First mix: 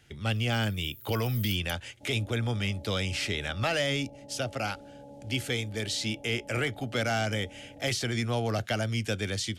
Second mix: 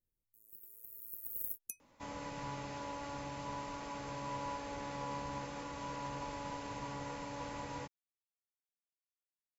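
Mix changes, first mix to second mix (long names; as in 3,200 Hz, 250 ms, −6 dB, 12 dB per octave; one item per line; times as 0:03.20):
speech: muted
second sound: remove Chebyshev low-pass with heavy ripple 850 Hz, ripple 6 dB
master: add thirty-one-band graphic EQ 160 Hz +11 dB, 1,000 Hz +10 dB, 3,150 Hz −5 dB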